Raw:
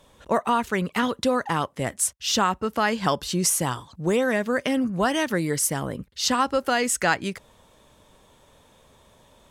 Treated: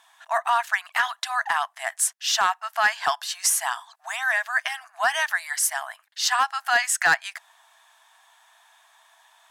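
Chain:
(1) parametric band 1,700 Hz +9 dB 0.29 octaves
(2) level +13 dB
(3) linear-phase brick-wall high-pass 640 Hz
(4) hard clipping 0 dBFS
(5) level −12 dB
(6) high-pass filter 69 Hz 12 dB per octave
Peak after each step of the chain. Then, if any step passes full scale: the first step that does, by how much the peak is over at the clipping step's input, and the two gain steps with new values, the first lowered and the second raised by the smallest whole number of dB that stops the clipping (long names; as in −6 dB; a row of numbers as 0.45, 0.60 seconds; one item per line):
−6.0, +7.0, +7.0, 0.0, −12.0, −11.0 dBFS
step 2, 7.0 dB
step 2 +6 dB, step 5 −5 dB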